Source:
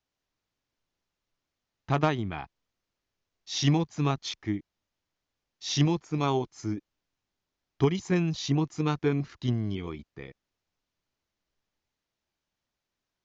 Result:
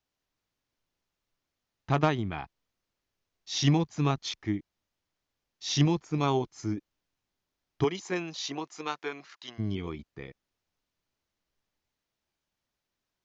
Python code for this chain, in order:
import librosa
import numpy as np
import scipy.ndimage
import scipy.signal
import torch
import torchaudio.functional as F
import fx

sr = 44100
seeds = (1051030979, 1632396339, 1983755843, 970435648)

y = fx.highpass(x, sr, hz=fx.line((7.83, 320.0), (9.58, 980.0)), slope=12, at=(7.83, 9.58), fade=0.02)